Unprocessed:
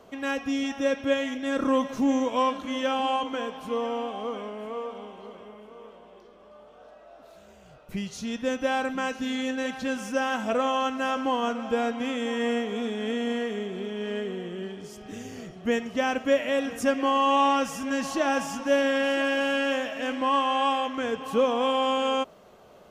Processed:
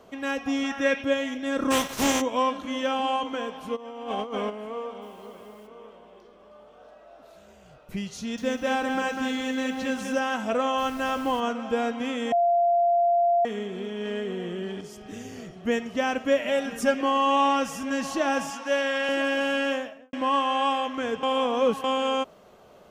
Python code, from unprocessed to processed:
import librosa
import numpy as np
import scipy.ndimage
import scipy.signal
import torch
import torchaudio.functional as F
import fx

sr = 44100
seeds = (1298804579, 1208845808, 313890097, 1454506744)

y = fx.peak_eq(x, sr, hz=fx.line((0.45, 770.0), (1.02, 2600.0)), db=10.0, octaves=1.1, at=(0.45, 1.02), fade=0.02)
y = fx.spec_flatten(y, sr, power=0.48, at=(1.7, 2.2), fade=0.02)
y = fx.over_compress(y, sr, threshold_db=-35.0, ratio=-0.5, at=(3.75, 4.49), fade=0.02)
y = fx.quant_dither(y, sr, seeds[0], bits=10, dither='none', at=(5.01, 5.66), fade=0.02)
y = fx.echo_crushed(y, sr, ms=196, feedback_pct=35, bits=9, wet_db=-5, at=(8.18, 10.19))
y = fx.dmg_noise_colour(y, sr, seeds[1], colour='pink', level_db=-47.0, at=(10.77, 11.39), fade=0.02)
y = fx.env_flatten(y, sr, amount_pct=50, at=(14.05, 14.81))
y = fx.comb(y, sr, ms=5.0, depth=0.65, at=(16.45, 17.01))
y = fx.weighting(y, sr, curve='A', at=(18.5, 19.09))
y = fx.studio_fade_out(y, sr, start_s=19.67, length_s=0.46)
y = fx.edit(y, sr, fx.bleep(start_s=12.32, length_s=1.13, hz=692.0, db=-18.0),
    fx.reverse_span(start_s=21.23, length_s=0.61), tone=tone)